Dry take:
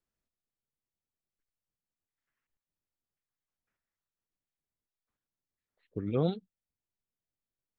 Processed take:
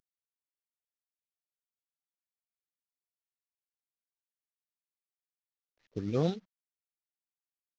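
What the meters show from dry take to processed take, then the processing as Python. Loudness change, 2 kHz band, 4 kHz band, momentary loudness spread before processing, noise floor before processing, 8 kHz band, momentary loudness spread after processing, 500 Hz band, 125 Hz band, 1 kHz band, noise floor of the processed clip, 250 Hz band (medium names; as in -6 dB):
0.0 dB, +3.0 dB, +1.5 dB, 13 LU, under -85 dBFS, no reading, 13 LU, -0.5 dB, -0.5 dB, 0.0 dB, under -85 dBFS, -0.5 dB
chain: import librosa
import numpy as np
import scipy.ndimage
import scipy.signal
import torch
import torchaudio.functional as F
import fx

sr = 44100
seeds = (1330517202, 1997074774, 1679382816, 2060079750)

y = fx.cvsd(x, sr, bps=32000)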